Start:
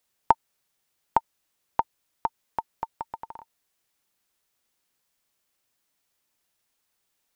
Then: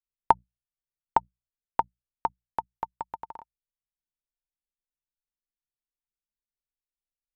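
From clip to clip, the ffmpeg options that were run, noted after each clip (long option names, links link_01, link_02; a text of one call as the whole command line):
ffmpeg -i in.wav -af "bandreject=frequency=60:width_type=h:width=6,bandreject=frequency=120:width_type=h:width=6,bandreject=frequency=180:width_type=h:width=6,anlmdn=0.001" out.wav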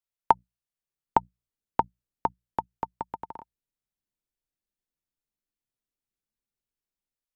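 ffmpeg -i in.wav -filter_complex "[0:a]lowshelf=frequency=82:gain=-8,acrossover=split=410|1700[link_01][link_02][link_03];[link_01]dynaudnorm=framelen=640:gausssize=3:maxgain=10dB[link_04];[link_04][link_02][link_03]amix=inputs=3:normalize=0" out.wav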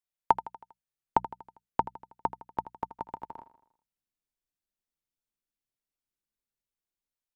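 ffmpeg -i in.wav -af "aecho=1:1:80|160|240|320|400:0.178|0.0942|0.05|0.0265|0.014,volume=-3dB" out.wav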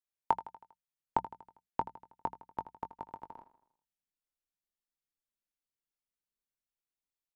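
ffmpeg -i in.wav -filter_complex "[0:a]asplit=2[link_01][link_02];[link_02]adelay=21,volume=-11.5dB[link_03];[link_01][link_03]amix=inputs=2:normalize=0,volume=-6dB" out.wav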